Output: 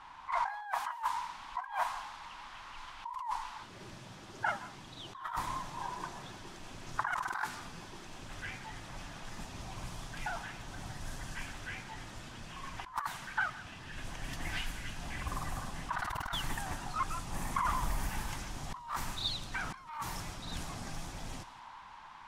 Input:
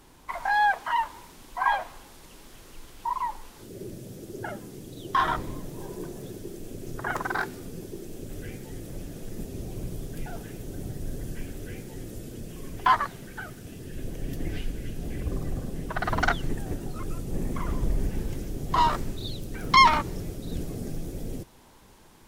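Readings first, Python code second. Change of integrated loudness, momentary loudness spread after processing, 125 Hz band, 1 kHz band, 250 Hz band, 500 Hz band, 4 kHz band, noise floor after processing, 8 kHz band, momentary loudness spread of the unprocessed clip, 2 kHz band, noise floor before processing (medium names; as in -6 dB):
-10.0 dB, 12 LU, -10.0 dB, -10.0 dB, -12.5 dB, -12.0 dB, -6.5 dB, -51 dBFS, -2.0 dB, 17 LU, -8.0 dB, -51 dBFS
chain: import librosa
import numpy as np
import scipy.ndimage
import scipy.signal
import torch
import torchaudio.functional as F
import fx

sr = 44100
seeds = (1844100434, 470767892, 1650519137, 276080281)

y = fx.tracing_dist(x, sr, depth_ms=0.031)
y = fx.env_lowpass(y, sr, base_hz=3000.0, full_db=-22.5)
y = fx.low_shelf_res(y, sr, hz=650.0, db=-13.5, q=3.0)
y = fx.over_compress(y, sr, threshold_db=-33.0, ratio=-1.0)
y = y + 10.0 ** (-19.0 / 20.0) * np.pad(y, (int(166 * sr / 1000.0), 0))[:len(y)]
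y = y * 10.0 ** (-4.5 / 20.0)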